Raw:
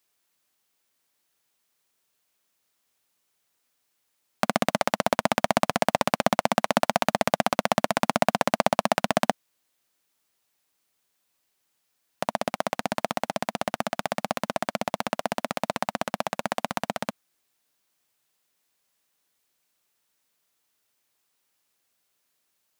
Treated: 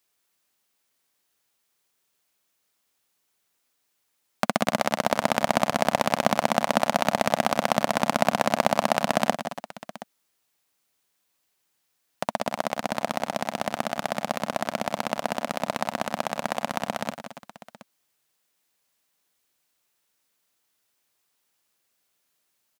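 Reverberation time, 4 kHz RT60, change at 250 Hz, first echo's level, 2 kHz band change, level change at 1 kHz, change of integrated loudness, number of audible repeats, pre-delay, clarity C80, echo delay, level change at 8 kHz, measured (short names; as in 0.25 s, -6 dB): none, none, +0.5 dB, -10.0 dB, +0.5 dB, +0.5 dB, +0.5 dB, 3, none, none, 0.175 s, +0.5 dB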